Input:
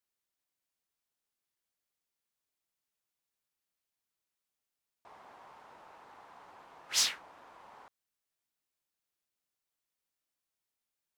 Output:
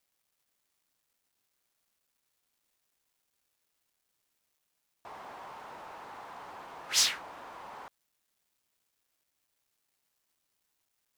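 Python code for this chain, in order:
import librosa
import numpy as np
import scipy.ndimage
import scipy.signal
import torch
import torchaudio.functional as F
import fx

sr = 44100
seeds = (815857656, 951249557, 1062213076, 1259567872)

y = fx.law_mismatch(x, sr, coded='mu')
y = F.gain(torch.from_numpy(y), 2.0).numpy()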